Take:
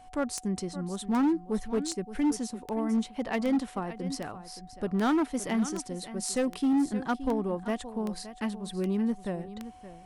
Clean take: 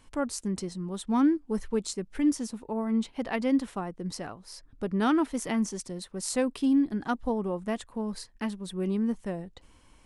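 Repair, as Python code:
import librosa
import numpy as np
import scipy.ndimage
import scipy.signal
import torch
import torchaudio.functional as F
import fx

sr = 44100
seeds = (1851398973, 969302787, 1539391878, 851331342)

y = fx.fix_declip(x, sr, threshold_db=-21.5)
y = fx.fix_declick_ar(y, sr, threshold=10.0)
y = fx.notch(y, sr, hz=740.0, q=30.0)
y = fx.fix_echo_inverse(y, sr, delay_ms=571, level_db=-14.0)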